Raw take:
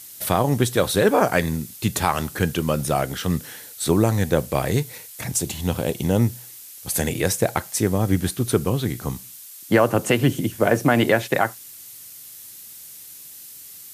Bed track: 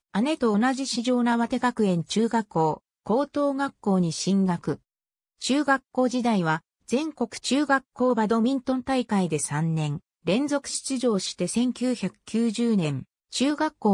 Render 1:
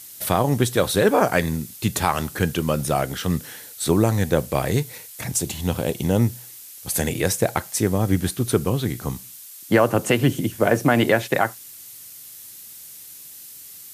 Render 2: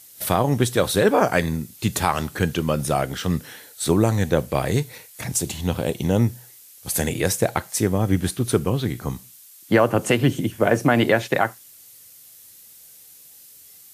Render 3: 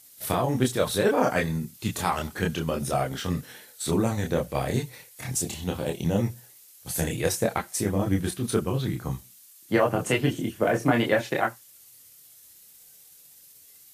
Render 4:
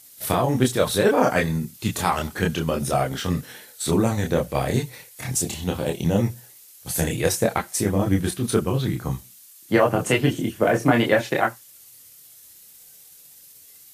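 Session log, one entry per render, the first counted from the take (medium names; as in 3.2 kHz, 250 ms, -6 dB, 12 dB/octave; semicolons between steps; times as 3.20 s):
no audible change
noise print and reduce 6 dB
tremolo 16 Hz, depth 41%; chorus voices 6, 0.26 Hz, delay 27 ms, depth 4.4 ms
trim +4 dB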